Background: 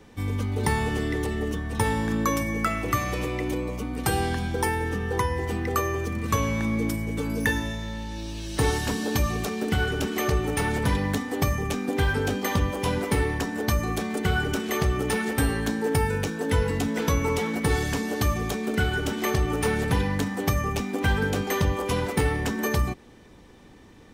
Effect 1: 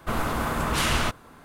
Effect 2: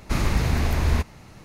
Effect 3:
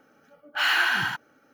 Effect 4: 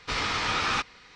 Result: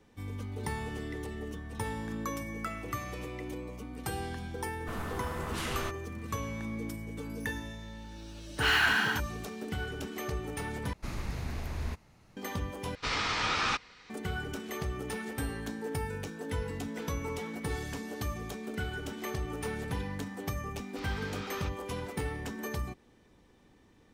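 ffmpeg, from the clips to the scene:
ffmpeg -i bed.wav -i cue0.wav -i cue1.wav -i cue2.wav -i cue3.wav -filter_complex "[4:a]asplit=2[link_01][link_02];[0:a]volume=-11.5dB,asplit=3[link_03][link_04][link_05];[link_03]atrim=end=10.934[link_06];[2:a]atrim=end=1.44,asetpts=PTS-STARTPTS,volume=-14.5dB[link_07];[link_04]atrim=start=12.366:end=12.954[link_08];[link_01]atrim=end=1.15,asetpts=PTS-STARTPTS,volume=-3dB[link_09];[link_05]atrim=start=14.096[link_10];[1:a]atrim=end=1.44,asetpts=PTS-STARTPTS,volume=-12.5dB,afade=type=in:duration=0.004:curve=hsin,afade=type=out:start_time=1.436:duration=0.004:curve=hsin,adelay=4800[link_11];[3:a]atrim=end=1.53,asetpts=PTS-STARTPTS,volume=-3.5dB,afade=type=in:duration=0.004:curve=hsin,afade=type=out:start_time=1.526:duration=0.004:curve=hsin,adelay=8040[link_12];[link_02]atrim=end=1.15,asetpts=PTS-STARTPTS,volume=-17.5dB,afade=type=in:duration=0.004:curve=hsin,afade=type=out:start_time=1.146:duration=0.004:curve=hsin,adelay=20870[link_13];[link_06][link_07]acrossfade=duration=0.004:curve1=hsin:curve2=hsin[link_14];[link_14][link_08]acrossfade=duration=0.004:curve1=hsin:curve2=hsin[link_15];[link_15][link_09]acrossfade=duration=0.004:curve1=hsin:curve2=hsin[link_16];[link_16][link_10]acrossfade=duration=0.004:curve1=hsin:curve2=hsin[link_17];[link_17][link_11][link_12][link_13]amix=inputs=4:normalize=0" out.wav

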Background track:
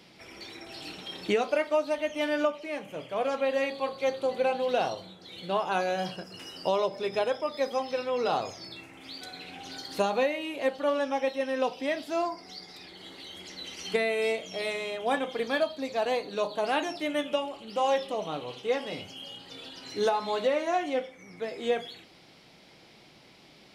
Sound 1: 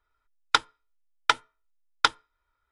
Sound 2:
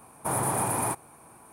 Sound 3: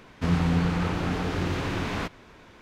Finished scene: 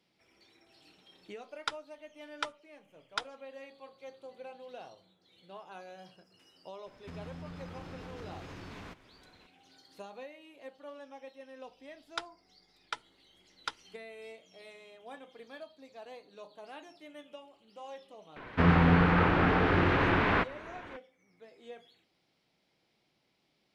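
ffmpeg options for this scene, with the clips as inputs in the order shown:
ffmpeg -i bed.wav -i cue0.wav -i cue1.wav -i cue2.wav -filter_complex "[1:a]asplit=2[link_01][link_02];[3:a]asplit=2[link_03][link_04];[0:a]volume=-20dB[link_05];[link_03]acompressor=threshold=-31dB:ratio=6:attack=3.2:release=140:knee=1:detection=peak[link_06];[link_02]aeval=exprs='val(0)+0.000631*(sin(2*PI*50*n/s)+sin(2*PI*2*50*n/s)/2+sin(2*PI*3*50*n/s)/3+sin(2*PI*4*50*n/s)/4+sin(2*PI*5*50*n/s)/5)':channel_layout=same[link_07];[link_04]firequalizer=gain_entry='entry(200,0);entry(360,4);entry(1600,8);entry(6700,-18)':delay=0.05:min_phase=1[link_08];[link_01]atrim=end=2.71,asetpts=PTS-STARTPTS,volume=-14dB,afade=type=in:duration=0.004:curve=hsin,afade=type=out:start_time=2.706:duration=0.004:curve=hsin,adelay=1130[link_09];[link_06]atrim=end=2.61,asetpts=PTS-STARTPTS,volume=-11dB,afade=type=in:duration=0.004:curve=hsin,afade=type=out:start_time=2.606:duration=0.004:curve=hsin,adelay=6860[link_10];[link_07]atrim=end=2.71,asetpts=PTS-STARTPTS,volume=-16.5dB,afade=type=in:duration=0.004:curve=hsin,afade=type=out:start_time=2.706:duration=0.004:curve=hsin,adelay=11630[link_11];[link_08]atrim=end=2.61,asetpts=PTS-STARTPTS,volume=-0.5dB,afade=type=in:duration=0.004:curve=hsin,afade=type=out:start_time=2.606:duration=0.004:curve=hsin,adelay=18360[link_12];[link_05][link_09][link_10][link_11][link_12]amix=inputs=5:normalize=0" out.wav

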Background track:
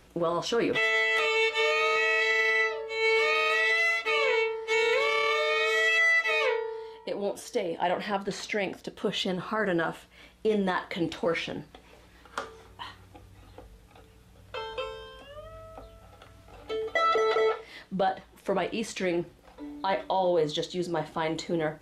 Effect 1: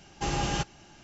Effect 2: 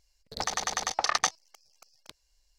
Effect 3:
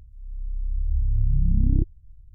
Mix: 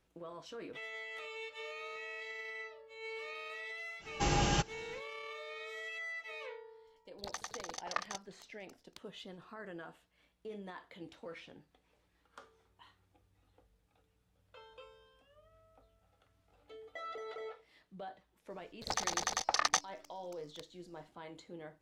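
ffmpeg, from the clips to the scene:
ffmpeg -i bed.wav -i cue0.wav -i cue1.wav -filter_complex "[2:a]asplit=2[link_01][link_02];[0:a]volume=-20dB[link_03];[link_01]aeval=exprs='val(0)*pow(10,-21*if(lt(mod(11*n/s,1),2*abs(11)/1000),1-mod(11*n/s,1)/(2*abs(11)/1000),(mod(11*n/s,1)-2*abs(11)/1000)/(1-2*abs(11)/1000))/20)':channel_layout=same[link_04];[1:a]atrim=end=1.03,asetpts=PTS-STARTPTS,volume=-1.5dB,afade=type=in:duration=0.05,afade=type=out:start_time=0.98:duration=0.05,adelay=3990[link_05];[link_04]atrim=end=2.58,asetpts=PTS-STARTPTS,volume=-5.5dB,afade=type=in:duration=0.004:curve=hsin,afade=type=out:start_time=2.576:duration=0.004:curve=hsin,adelay=6870[link_06];[link_02]atrim=end=2.58,asetpts=PTS-STARTPTS,volume=-4.5dB,afade=type=in:duration=0.004:curve=hsin,afade=type=out:start_time=2.576:duration=0.004:curve=hsin,adelay=18500[link_07];[link_03][link_05][link_06][link_07]amix=inputs=4:normalize=0" out.wav

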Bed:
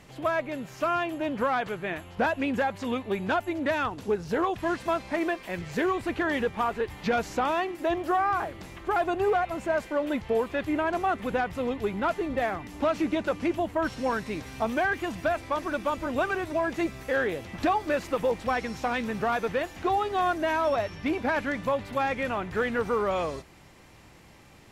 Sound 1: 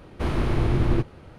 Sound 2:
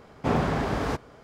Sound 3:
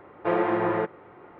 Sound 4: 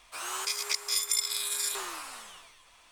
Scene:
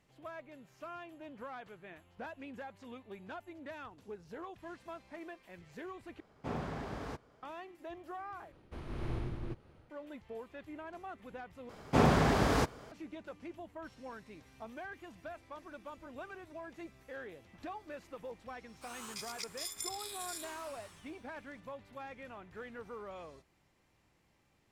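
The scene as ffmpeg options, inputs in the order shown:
ffmpeg -i bed.wav -i cue0.wav -i cue1.wav -i cue2.wav -i cue3.wav -filter_complex "[2:a]asplit=2[link_01][link_02];[0:a]volume=-19.5dB[link_03];[1:a]tremolo=f=1.7:d=0.5[link_04];[link_02]highshelf=frequency=4500:gain=7.5[link_05];[link_03]asplit=4[link_06][link_07][link_08][link_09];[link_06]atrim=end=6.204[link_10];[link_01]atrim=end=1.23,asetpts=PTS-STARTPTS,volume=-14.5dB[link_11];[link_07]atrim=start=7.426:end=8.524[link_12];[link_04]atrim=end=1.38,asetpts=PTS-STARTPTS,volume=-14.5dB[link_13];[link_08]atrim=start=9.896:end=11.694[link_14];[link_05]atrim=end=1.23,asetpts=PTS-STARTPTS,volume=-1.5dB[link_15];[link_09]atrim=start=12.916[link_16];[4:a]atrim=end=2.91,asetpts=PTS-STARTPTS,volume=-13dB,afade=type=in:duration=0.004:curve=hsin,afade=type=out:start_time=2.906:duration=0.004:curve=hsin,adelay=18690[link_17];[link_10][link_11]acrossfade=duration=0.004:curve1=hsin:curve2=hsin[link_18];[link_18][link_12]acrossfade=duration=0.004:curve1=hsin:curve2=hsin[link_19];[link_19][link_13]acrossfade=duration=0.004:curve1=hsin:curve2=hsin[link_20];[link_20][link_14]acrossfade=duration=0.004:curve1=hsin:curve2=hsin[link_21];[link_21][link_15]acrossfade=duration=0.004:curve1=hsin:curve2=hsin[link_22];[link_22][link_16]acrossfade=duration=0.004:curve1=hsin:curve2=hsin[link_23];[link_23][link_17]amix=inputs=2:normalize=0" out.wav

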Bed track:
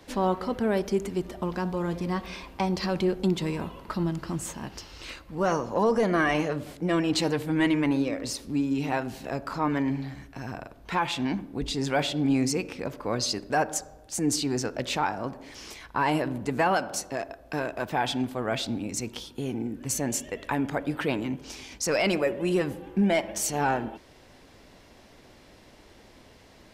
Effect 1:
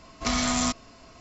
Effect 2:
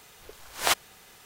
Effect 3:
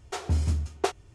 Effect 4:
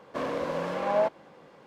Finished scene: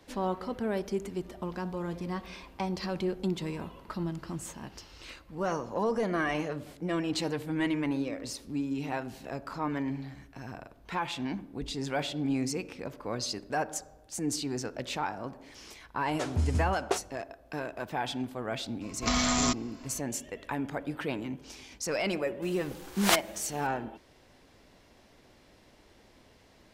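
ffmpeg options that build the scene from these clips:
ffmpeg -i bed.wav -i cue0.wav -i cue1.wav -i cue2.wav -filter_complex "[0:a]volume=-6dB[link_01];[3:a]atrim=end=1.14,asetpts=PTS-STARTPTS,volume=-3dB,afade=type=in:duration=0.004:curve=hsin,afade=type=out:start_time=1.136:duration=0.004:curve=hsin,adelay=16070[link_02];[1:a]atrim=end=1.2,asetpts=PTS-STARTPTS,volume=-1.5dB,afade=type=in:duration=0.004:curve=hsin,afade=type=out:start_time=1.196:duration=0.004:curve=hsin,adelay=18810[link_03];[2:a]atrim=end=1.25,asetpts=PTS-STARTPTS,volume=-1dB,afade=type=in:duration=0.004:curve=hsin,afade=type=out:start_time=1.246:duration=0.004:curve=hsin,adelay=22420[link_04];[link_01][link_02][link_03][link_04]amix=inputs=4:normalize=0" out.wav

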